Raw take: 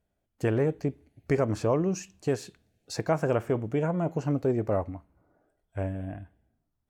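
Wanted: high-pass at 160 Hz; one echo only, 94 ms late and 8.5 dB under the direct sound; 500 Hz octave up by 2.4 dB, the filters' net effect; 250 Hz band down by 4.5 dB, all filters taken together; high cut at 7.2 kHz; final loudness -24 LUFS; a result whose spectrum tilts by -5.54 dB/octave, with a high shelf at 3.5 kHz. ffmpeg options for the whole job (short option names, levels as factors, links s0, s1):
-af "highpass=160,lowpass=7200,equalizer=f=250:t=o:g=-7.5,equalizer=f=500:t=o:g=5,highshelf=f=3500:g=7,aecho=1:1:94:0.376,volume=1.68"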